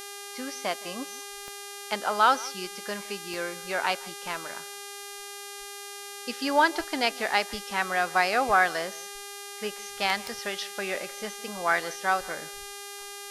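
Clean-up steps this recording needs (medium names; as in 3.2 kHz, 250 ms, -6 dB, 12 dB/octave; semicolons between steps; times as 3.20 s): de-click; de-hum 403.4 Hz, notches 30; expander -33 dBFS, range -21 dB; inverse comb 165 ms -21 dB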